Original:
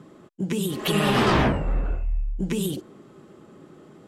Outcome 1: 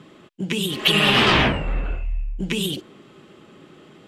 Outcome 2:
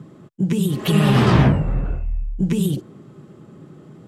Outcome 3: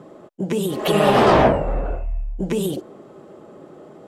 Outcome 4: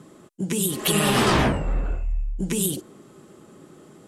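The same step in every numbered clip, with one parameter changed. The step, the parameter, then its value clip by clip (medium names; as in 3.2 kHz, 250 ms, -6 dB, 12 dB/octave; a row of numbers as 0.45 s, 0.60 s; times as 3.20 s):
peaking EQ, frequency: 2.9 kHz, 130 Hz, 620 Hz, 9.7 kHz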